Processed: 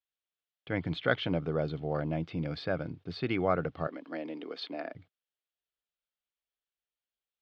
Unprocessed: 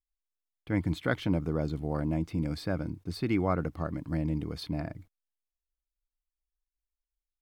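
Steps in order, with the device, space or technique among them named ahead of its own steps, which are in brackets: 3.87–4.95 s: steep high-pass 250 Hz 36 dB/octave; kitchen radio (cabinet simulation 170–4000 Hz, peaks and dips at 210 Hz -10 dB, 310 Hz -9 dB, 980 Hz -8 dB, 2.1 kHz -3 dB, 3.2 kHz +4 dB); trim +4 dB

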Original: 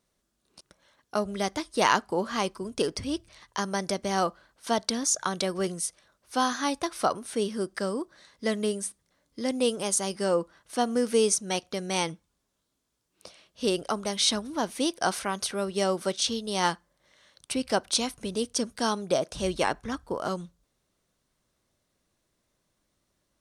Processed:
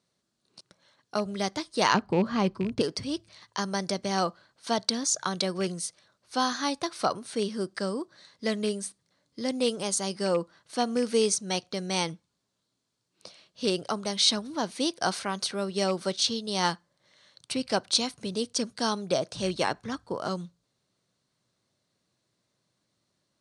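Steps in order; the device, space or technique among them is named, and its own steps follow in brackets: 1.94–2.81 s: RIAA curve playback; car door speaker with a rattle (rattle on loud lows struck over -29 dBFS, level -29 dBFS; cabinet simulation 110–9400 Hz, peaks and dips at 120 Hz +8 dB, 180 Hz +3 dB, 4.3 kHz +7 dB); trim -1.5 dB

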